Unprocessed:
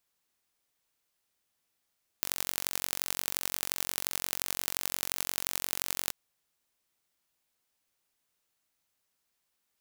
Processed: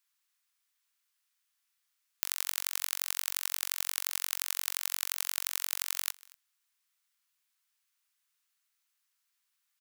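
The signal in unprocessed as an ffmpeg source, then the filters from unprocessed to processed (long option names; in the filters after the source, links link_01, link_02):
-f lavfi -i "aevalsrc='0.841*eq(mod(n,965),0)*(0.5+0.5*eq(mod(n,3860),0))':duration=3.89:sample_rate=44100"
-af "highpass=frequency=1100:width=0.5412,highpass=frequency=1100:width=1.3066,aecho=1:1:238:0.0668"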